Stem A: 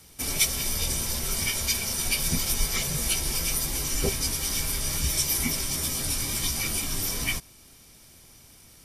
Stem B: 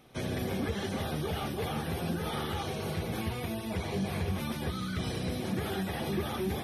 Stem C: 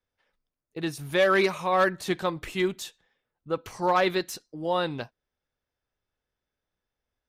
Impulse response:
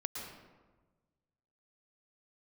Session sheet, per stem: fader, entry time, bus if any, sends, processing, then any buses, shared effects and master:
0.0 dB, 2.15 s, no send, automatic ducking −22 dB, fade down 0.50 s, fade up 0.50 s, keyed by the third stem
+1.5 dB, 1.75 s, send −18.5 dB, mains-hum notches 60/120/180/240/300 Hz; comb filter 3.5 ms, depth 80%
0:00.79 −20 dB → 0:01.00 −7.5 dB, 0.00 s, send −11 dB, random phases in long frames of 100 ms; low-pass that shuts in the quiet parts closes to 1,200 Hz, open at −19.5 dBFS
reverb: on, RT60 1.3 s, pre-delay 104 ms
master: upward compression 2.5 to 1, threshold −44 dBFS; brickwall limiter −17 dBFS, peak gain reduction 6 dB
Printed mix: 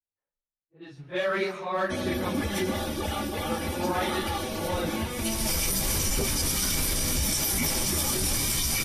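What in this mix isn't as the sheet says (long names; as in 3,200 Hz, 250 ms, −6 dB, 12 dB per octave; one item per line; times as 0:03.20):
stem A 0.0 dB → +6.5 dB
master: missing upward compression 2.5 to 1, threshold −44 dBFS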